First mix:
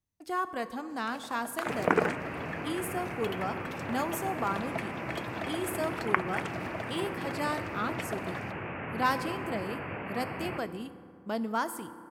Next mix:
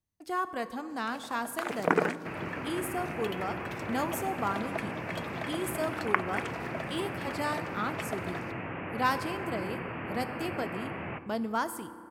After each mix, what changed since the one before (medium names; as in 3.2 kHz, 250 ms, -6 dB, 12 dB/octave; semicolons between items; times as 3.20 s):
second sound: entry +0.60 s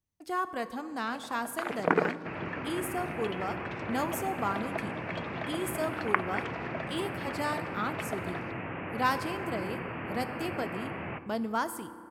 first sound: add low-pass 4 kHz 12 dB/octave